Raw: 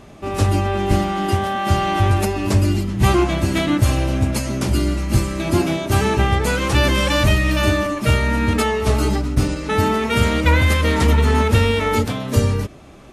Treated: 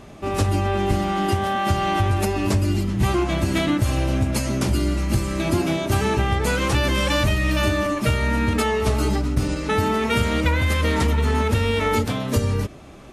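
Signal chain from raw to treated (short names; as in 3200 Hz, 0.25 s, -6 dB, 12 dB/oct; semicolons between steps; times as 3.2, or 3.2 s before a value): compressor, threshold -16 dBFS, peak gain reduction 7 dB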